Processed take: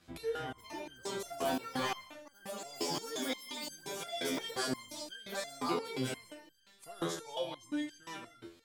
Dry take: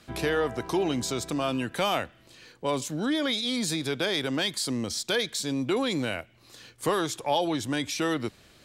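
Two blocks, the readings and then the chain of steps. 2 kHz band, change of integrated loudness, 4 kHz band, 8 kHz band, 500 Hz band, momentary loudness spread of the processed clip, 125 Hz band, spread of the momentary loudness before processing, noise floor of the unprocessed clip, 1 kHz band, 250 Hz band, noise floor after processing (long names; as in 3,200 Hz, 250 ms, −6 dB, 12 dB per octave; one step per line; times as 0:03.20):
−10.5 dB, −10.5 dB, −11.0 dB, −9.0 dB, −10.0 dB, 12 LU, −13.0 dB, 5 LU, −58 dBFS, −8.5 dB, −11.5 dB, −64 dBFS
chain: delay with pitch and tempo change per echo 468 ms, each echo +6 semitones, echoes 2
reverb whose tail is shaped and stops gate 210 ms rising, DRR 6.5 dB
step-sequenced resonator 5.7 Hz 85–1,600 Hz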